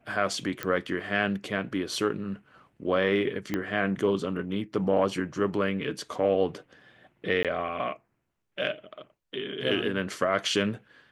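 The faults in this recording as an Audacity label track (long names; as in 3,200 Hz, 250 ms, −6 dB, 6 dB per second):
0.630000	0.630000	click −15 dBFS
3.540000	3.540000	click −15 dBFS
7.430000	7.450000	drop-out 17 ms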